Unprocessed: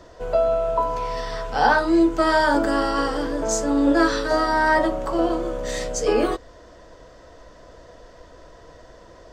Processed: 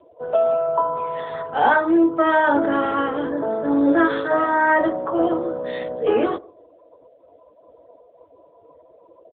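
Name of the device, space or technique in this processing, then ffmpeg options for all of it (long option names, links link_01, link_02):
mobile call with aggressive noise cancelling: -filter_complex "[0:a]highpass=frequency=120:poles=1,lowpass=frequency=6300:width=0.5412,lowpass=frequency=6300:width=1.3066,equalizer=frequency=4600:width=2:gain=3.5,asplit=2[link_01][link_02];[link_02]adelay=151,lowpass=frequency=3000:poles=1,volume=-22.5dB,asplit=2[link_03][link_04];[link_04]adelay=151,lowpass=frequency=3000:poles=1,volume=0.2[link_05];[link_01][link_03][link_05]amix=inputs=3:normalize=0,afftdn=noise_reduction=28:noise_floor=-40,volume=2dB" -ar 8000 -c:a libopencore_amrnb -b:a 10200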